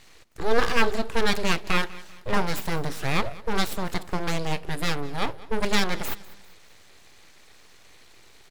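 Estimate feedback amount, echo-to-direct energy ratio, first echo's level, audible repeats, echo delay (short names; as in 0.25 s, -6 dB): 40%, -19.5 dB, -20.0 dB, 2, 0.197 s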